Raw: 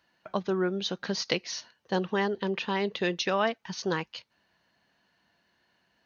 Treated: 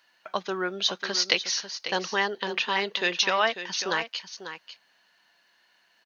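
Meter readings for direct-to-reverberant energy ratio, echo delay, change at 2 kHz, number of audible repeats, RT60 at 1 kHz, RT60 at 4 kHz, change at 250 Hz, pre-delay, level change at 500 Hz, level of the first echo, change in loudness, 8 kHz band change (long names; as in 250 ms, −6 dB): no reverb audible, 545 ms, +7.0 dB, 1, no reverb audible, no reverb audible, −6.0 dB, no reverb audible, −1.5 dB, −11.0 dB, +3.5 dB, can't be measured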